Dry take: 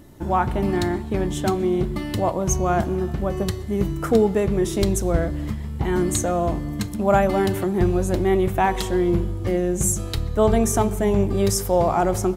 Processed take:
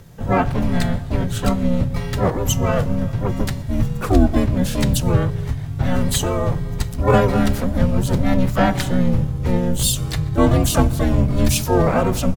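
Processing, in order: harmoniser -12 st 0 dB, +3 st -2 dB, +12 st -7 dB; frequency shift -180 Hz; gain -1 dB

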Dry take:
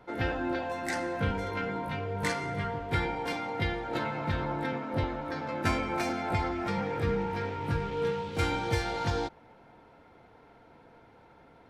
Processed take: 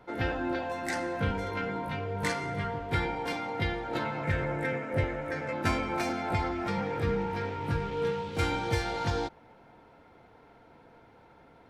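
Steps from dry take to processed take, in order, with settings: 4.23–5.53 graphic EQ 125/250/500/1000/2000/4000/8000 Hz +4/-5/+6/-8/+10/-10/+8 dB

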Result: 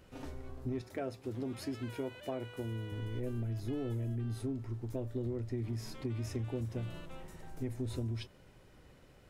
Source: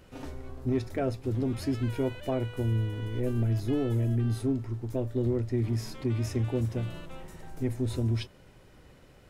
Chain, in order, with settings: 0.81–2.92 HPF 250 Hz 6 dB/oct; compressor, threshold -29 dBFS, peak gain reduction 6 dB; gain -4.5 dB

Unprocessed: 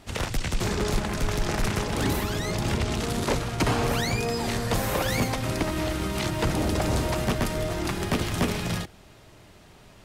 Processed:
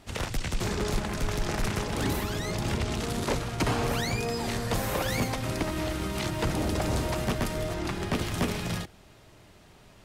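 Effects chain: 7.74–8.15 high shelf 8800 Hz -9 dB; gain -3 dB

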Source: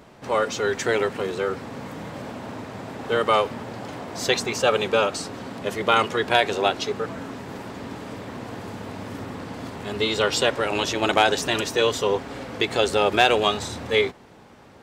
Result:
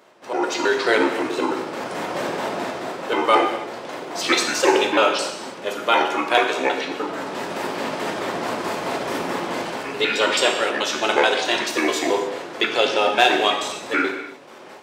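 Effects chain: trilling pitch shifter -7 st, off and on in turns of 0.108 s; AGC gain up to 14.5 dB; HPF 380 Hz 12 dB/oct; non-linear reverb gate 0.33 s falling, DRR 2 dB; gain -2.5 dB

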